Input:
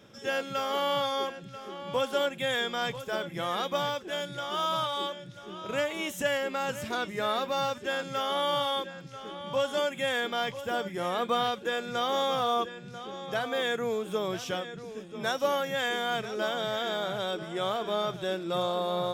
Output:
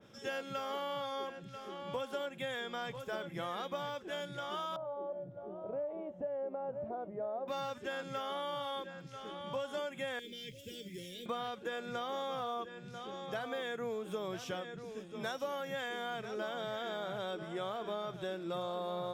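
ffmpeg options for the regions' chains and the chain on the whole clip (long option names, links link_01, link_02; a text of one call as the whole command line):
ffmpeg -i in.wav -filter_complex "[0:a]asettb=1/sr,asplit=3[link_01][link_02][link_03];[link_01]atrim=end=4.764[link_04];[link_02]atrim=start=4.76:end=7.48,asetpts=PTS-STARTPTS,afade=type=in:duration=0.004:curve=qsin,afade=type=out:start_time=2.716:duration=0.004:curve=qsin,acompressor=threshold=-41dB:ratio=2:attack=3.2:release=140:knee=1:detection=peak,lowpass=frequency=660:width_type=q:width=3.8[link_05];[link_03]atrim=start=7.476[link_06];[link_04][link_05]acrossfade=duration=0.004:curve1=hsin:curve2=qsin[link_07];[link_07][link_06]acrossfade=duration=0.004:curve1=qsin:curve2=hsin,asettb=1/sr,asplit=3[link_08][link_09][link_10];[link_08]atrim=end=10.194[link_11];[link_09]atrim=start=10.19:end=11.26,asetpts=PTS-STARTPTS,afade=type=in:duration=0.004:curve=qsin,afade=type=out:start_time=1.066:duration=0.004:curve=qsin,acrossover=split=130|3000[link_12][link_13][link_14];[link_13]acompressor=threshold=-42dB:ratio=2:attack=3.2:release=140:knee=2.83:detection=peak[link_15];[link_12][link_15][link_14]amix=inputs=3:normalize=0,acrusher=bits=8:mix=0:aa=0.5,asuperstop=centerf=990:order=8:qfactor=0.63[link_16];[link_10]atrim=start=11.256[link_17];[link_11][link_16]acrossfade=duration=0.004:curve1=hsin:curve2=qsin[link_18];[link_18][link_17]acrossfade=duration=0.004:curve1=qsin:curve2=hsin,acompressor=threshold=-30dB:ratio=6,adynamicequalizer=threshold=0.00398:dfrequency=2500:dqfactor=0.7:tfrequency=2500:tqfactor=0.7:attack=5:release=100:ratio=0.375:range=2.5:mode=cutabove:tftype=highshelf,volume=-4.5dB" out.wav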